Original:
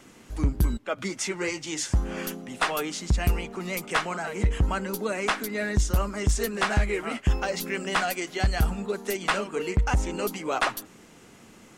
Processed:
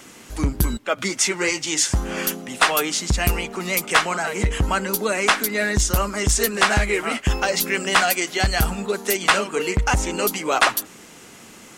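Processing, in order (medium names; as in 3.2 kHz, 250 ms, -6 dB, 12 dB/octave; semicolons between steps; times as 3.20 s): tilt EQ +1.5 dB/octave; trim +7.5 dB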